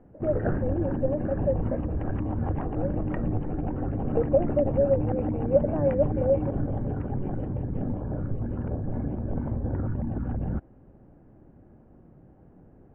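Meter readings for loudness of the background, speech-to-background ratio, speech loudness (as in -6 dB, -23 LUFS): -30.5 LUFS, 2.0 dB, -28.5 LUFS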